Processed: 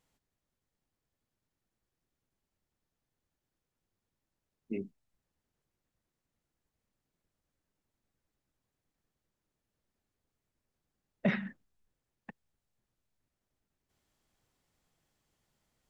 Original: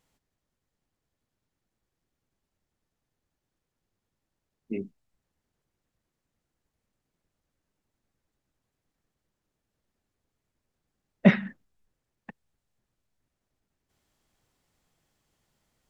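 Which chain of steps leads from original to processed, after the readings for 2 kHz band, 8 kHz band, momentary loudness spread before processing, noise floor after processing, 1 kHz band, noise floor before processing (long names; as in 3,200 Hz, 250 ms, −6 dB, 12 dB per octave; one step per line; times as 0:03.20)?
−8.0 dB, can't be measured, 21 LU, below −85 dBFS, −9.0 dB, −85 dBFS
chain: brickwall limiter −15 dBFS, peak gain reduction 10.5 dB
level −4 dB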